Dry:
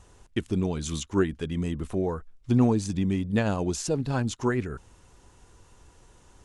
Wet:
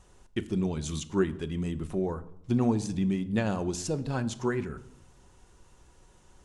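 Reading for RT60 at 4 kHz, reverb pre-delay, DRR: 0.55 s, 5 ms, 10.5 dB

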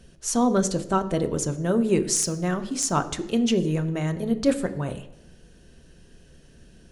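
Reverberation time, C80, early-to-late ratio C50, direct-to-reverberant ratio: 0.90 s, 16.0 dB, 13.5 dB, 8.0 dB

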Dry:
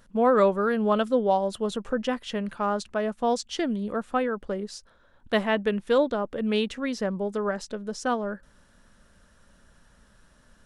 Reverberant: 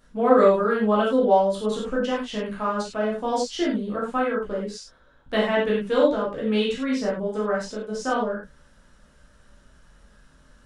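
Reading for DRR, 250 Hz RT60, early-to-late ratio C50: -6.0 dB, n/a, 2.5 dB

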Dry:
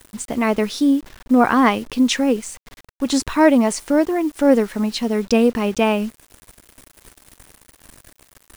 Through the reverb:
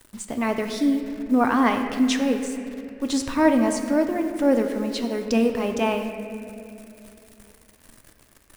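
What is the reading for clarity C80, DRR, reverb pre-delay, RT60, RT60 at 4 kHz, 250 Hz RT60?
7.0 dB, 4.5 dB, 3 ms, 2.8 s, 2.0 s, 3.2 s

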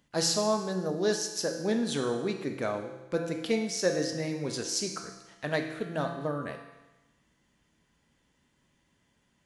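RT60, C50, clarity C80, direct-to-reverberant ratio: 1.1 s, 6.0 dB, 8.0 dB, 3.0 dB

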